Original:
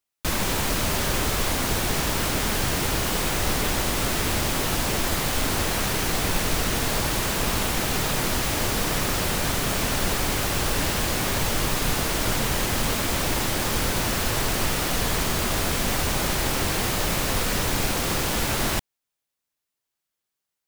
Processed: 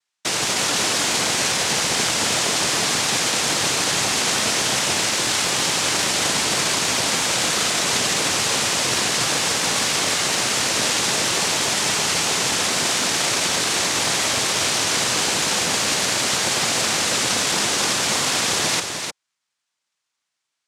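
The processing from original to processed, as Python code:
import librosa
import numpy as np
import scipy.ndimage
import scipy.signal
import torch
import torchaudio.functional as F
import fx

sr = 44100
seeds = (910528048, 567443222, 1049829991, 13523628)

y = fx.high_shelf_res(x, sr, hz=2100.0, db=6.5, q=3.0)
y = fx.noise_vocoder(y, sr, seeds[0], bands=2)
y = y + 10.0 ** (-6.0 / 20.0) * np.pad(y, (int(305 * sr / 1000.0), 0))[:len(y)]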